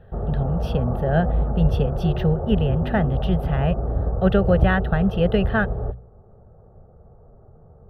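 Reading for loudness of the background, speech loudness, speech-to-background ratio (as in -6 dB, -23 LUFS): -26.0 LUFS, -23.0 LUFS, 3.0 dB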